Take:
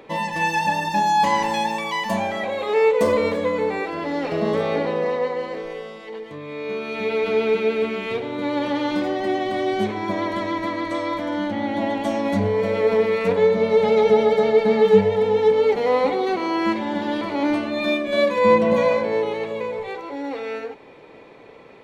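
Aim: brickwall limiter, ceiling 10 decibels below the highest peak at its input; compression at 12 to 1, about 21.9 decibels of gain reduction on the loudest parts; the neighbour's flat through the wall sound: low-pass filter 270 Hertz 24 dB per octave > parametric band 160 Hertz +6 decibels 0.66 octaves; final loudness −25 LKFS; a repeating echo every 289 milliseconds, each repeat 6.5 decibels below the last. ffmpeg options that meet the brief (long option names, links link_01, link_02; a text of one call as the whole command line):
ffmpeg -i in.wav -af "acompressor=threshold=-32dB:ratio=12,alimiter=level_in=8.5dB:limit=-24dB:level=0:latency=1,volume=-8.5dB,lowpass=frequency=270:width=0.5412,lowpass=frequency=270:width=1.3066,equalizer=frequency=160:width_type=o:width=0.66:gain=6,aecho=1:1:289|578|867|1156|1445|1734:0.473|0.222|0.105|0.0491|0.0231|0.0109,volume=22dB" out.wav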